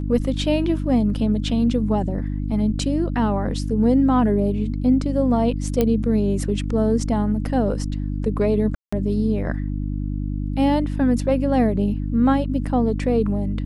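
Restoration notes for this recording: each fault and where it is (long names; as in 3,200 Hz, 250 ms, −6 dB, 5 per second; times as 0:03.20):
mains hum 50 Hz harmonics 6 −25 dBFS
0:05.81: click −7 dBFS
0:08.75–0:08.93: drop-out 175 ms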